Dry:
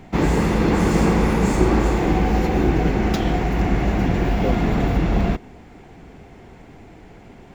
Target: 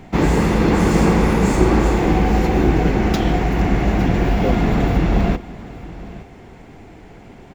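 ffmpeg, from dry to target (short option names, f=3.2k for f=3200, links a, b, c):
-af "aecho=1:1:867:0.126,volume=2.5dB"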